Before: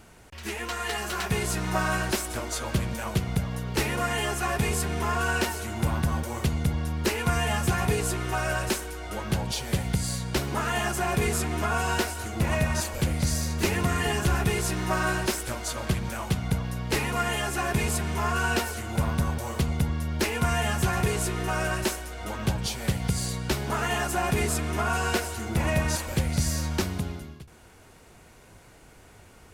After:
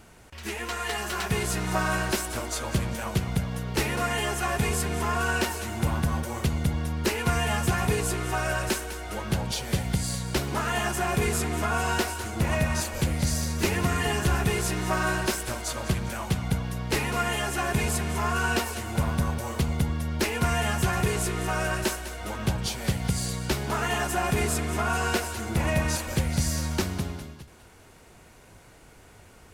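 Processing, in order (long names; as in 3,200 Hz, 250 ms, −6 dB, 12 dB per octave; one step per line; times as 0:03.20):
feedback echo with a high-pass in the loop 202 ms, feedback 42%, level −12.5 dB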